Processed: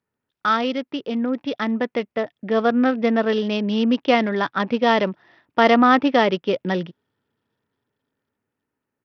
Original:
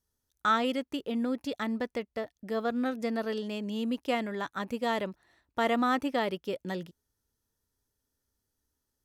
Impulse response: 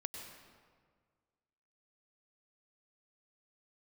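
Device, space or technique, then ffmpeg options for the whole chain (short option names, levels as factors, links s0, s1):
Bluetooth headset: -af "highpass=f=120:w=0.5412,highpass=f=120:w=1.3066,dynaudnorm=f=410:g=9:m=2.11,aresample=8000,aresample=44100,volume=2" -ar 44100 -c:a sbc -b:a 64k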